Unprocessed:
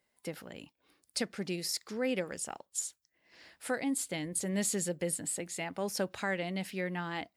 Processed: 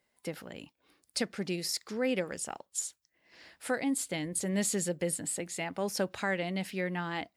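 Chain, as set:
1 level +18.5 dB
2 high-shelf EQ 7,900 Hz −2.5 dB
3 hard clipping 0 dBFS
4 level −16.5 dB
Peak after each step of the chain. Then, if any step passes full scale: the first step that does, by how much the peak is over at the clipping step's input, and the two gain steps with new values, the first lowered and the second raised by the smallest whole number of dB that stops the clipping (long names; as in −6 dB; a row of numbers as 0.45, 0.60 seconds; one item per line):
−2.0, −2.0, −2.0, −18.5 dBFS
no step passes full scale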